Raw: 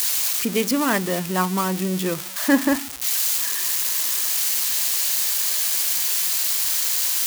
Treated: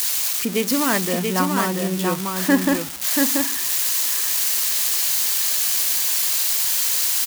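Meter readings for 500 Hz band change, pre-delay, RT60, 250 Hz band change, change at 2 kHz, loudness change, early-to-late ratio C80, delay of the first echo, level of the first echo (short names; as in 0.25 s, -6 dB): +1.5 dB, none, none, +1.5 dB, +1.5 dB, +1.5 dB, none, 0.683 s, -4.0 dB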